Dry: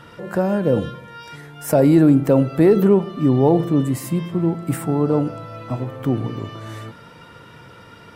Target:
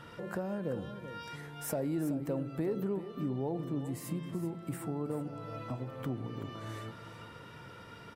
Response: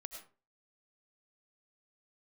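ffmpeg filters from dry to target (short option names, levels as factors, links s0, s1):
-filter_complex "[0:a]acompressor=threshold=0.0282:ratio=2.5,asplit=2[s0][s1];[s1]aecho=0:1:378:0.266[s2];[s0][s2]amix=inputs=2:normalize=0,volume=0.447"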